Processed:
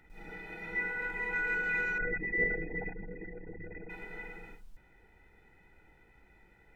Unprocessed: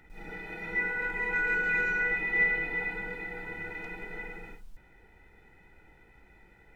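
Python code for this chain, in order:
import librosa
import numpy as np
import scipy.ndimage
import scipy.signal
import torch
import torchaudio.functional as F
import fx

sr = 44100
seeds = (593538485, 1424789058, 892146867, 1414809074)

y = fx.envelope_sharpen(x, sr, power=3.0, at=(1.98, 3.9))
y = F.gain(torch.from_numpy(y), -4.0).numpy()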